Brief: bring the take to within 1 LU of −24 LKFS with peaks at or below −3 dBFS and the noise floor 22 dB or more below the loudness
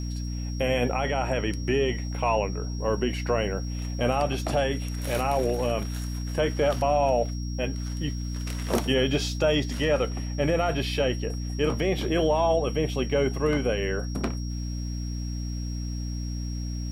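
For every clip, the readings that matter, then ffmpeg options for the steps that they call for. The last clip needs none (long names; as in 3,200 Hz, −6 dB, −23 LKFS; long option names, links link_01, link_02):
mains hum 60 Hz; hum harmonics up to 300 Hz; level of the hum −29 dBFS; interfering tone 5,600 Hz; level of the tone −43 dBFS; integrated loudness −27.0 LKFS; sample peak −12.0 dBFS; target loudness −24.0 LKFS
→ -af "bandreject=frequency=60:width_type=h:width=6,bandreject=frequency=120:width_type=h:width=6,bandreject=frequency=180:width_type=h:width=6,bandreject=frequency=240:width_type=h:width=6,bandreject=frequency=300:width_type=h:width=6"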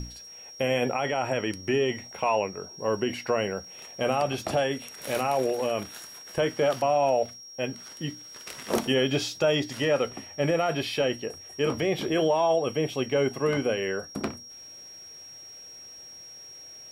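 mains hum none found; interfering tone 5,600 Hz; level of the tone −43 dBFS
→ -af "bandreject=frequency=5600:width=30"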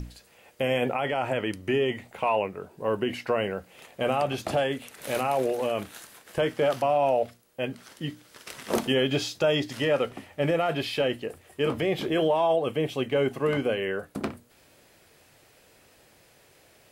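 interfering tone none found; integrated loudness −27.5 LKFS; sample peak −12.5 dBFS; target loudness −24.0 LKFS
→ -af "volume=3.5dB"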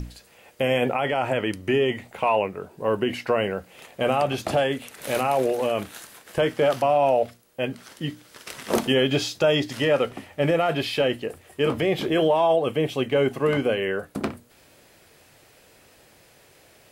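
integrated loudness −24.0 LKFS; sample peak −9.0 dBFS; background noise floor −55 dBFS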